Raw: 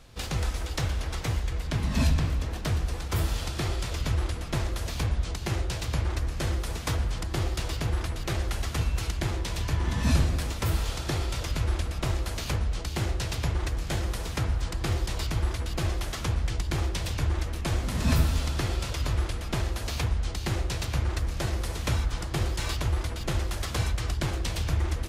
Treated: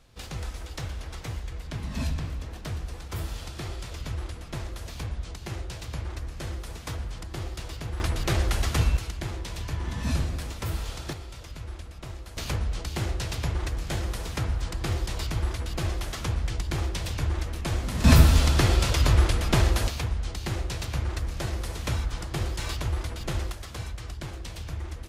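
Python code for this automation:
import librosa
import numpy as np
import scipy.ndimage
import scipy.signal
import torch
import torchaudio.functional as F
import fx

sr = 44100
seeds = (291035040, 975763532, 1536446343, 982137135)

y = fx.gain(x, sr, db=fx.steps((0.0, -6.0), (8.0, 4.5), (8.97, -4.0), (11.13, -11.0), (12.37, -0.5), (18.04, 7.5), (19.88, -1.5), (23.52, -8.0)))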